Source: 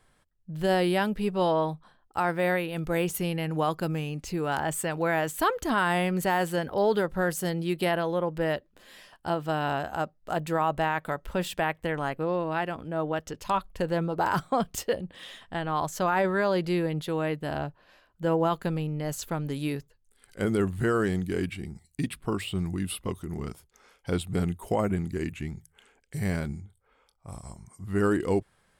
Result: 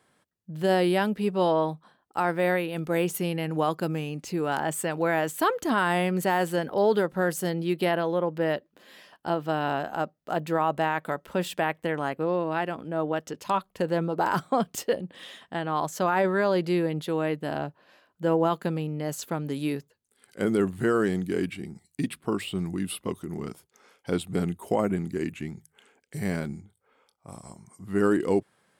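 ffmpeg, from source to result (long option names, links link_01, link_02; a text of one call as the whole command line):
ffmpeg -i in.wav -filter_complex "[0:a]asettb=1/sr,asplit=3[link_01][link_02][link_03];[link_01]atrim=end=7.464[link_04];[link_02]atrim=start=7.46:end=10.7,asetpts=PTS-STARTPTS,afade=type=in:duration=0.004:curve=qsin,afade=type=out:start_time=3.236:duration=0.004:curve=qsin,equalizer=frequency=8700:width_type=o:width=0.77:gain=-5.5[link_05];[link_03]atrim=start=10.696[link_06];[link_04][link_05]acrossfade=duration=0.004:curve1=hsin:curve2=qsin[link_07];[link_07][link_06]acrossfade=duration=0.004:curve1=qsin:curve2=hsin,highpass=220,lowshelf=frequency=300:gain=7.5" out.wav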